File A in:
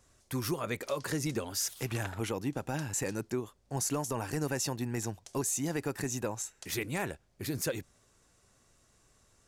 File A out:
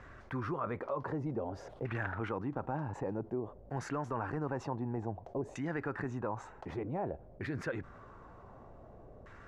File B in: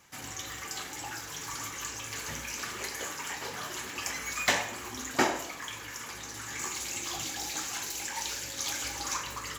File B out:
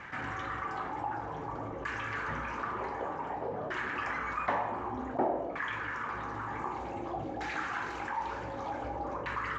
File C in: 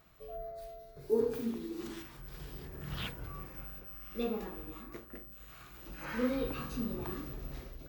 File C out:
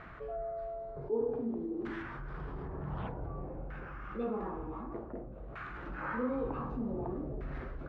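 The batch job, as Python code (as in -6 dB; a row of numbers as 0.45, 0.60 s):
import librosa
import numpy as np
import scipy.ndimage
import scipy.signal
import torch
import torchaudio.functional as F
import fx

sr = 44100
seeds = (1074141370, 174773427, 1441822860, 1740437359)

y = fx.filter_lfo_lowpass(x, sr, shape='saw_down', hz=0.54, low_hz=570.0, high_hz=1800.0, q=2.2)
y = fx.env_flatten(y, sr, amount_pct=50)
y = y * librosa.db_to_amplitude(-6.5)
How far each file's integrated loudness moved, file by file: -4.0, -2.0, 0.0 LU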